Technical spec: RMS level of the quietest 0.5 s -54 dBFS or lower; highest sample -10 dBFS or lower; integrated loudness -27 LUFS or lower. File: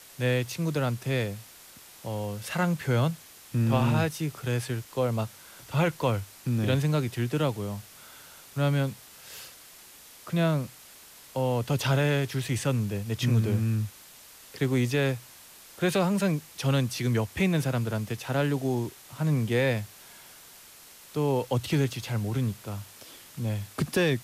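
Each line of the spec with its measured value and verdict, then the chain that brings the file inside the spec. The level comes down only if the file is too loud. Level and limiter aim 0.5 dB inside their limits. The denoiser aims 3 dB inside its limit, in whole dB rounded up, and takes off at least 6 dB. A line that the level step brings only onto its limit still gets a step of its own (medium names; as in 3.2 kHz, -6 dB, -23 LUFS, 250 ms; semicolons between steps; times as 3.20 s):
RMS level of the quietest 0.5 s -51 dBFS: fail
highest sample -13.5 dBFS: pass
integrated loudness -28.0 LUFS: pass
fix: noise reduction 6 dB, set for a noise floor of -51 dBFS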